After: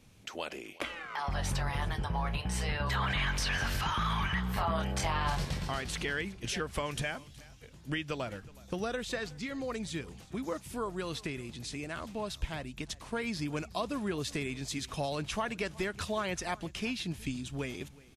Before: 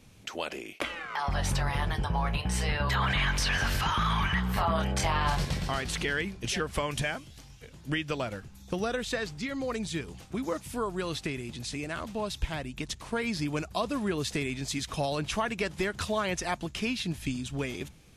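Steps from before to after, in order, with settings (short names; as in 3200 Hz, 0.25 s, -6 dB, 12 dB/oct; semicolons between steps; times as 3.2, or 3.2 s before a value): echo 0.369 s -22 dB; gain -4 dB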